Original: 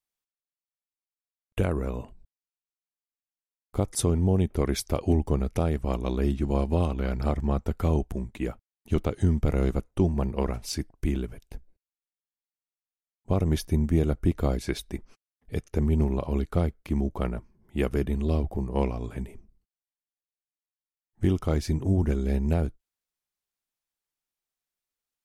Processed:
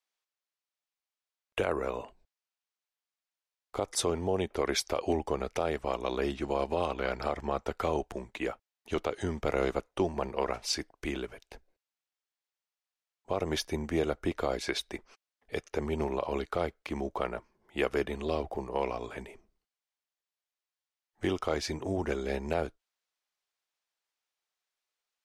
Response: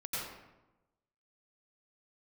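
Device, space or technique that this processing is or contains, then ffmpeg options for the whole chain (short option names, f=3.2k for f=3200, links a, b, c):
DJ mixer with the lows and highs turned down: -filter_complex "[0:a]acrossover=split=410 6900:gain=0.1 1 0.224[a][b][c];[a][b][c]amix=inputs=3:normalize=0,alimiter=limit=-22dB:level=0:latency=1:release=58,volume=5dB"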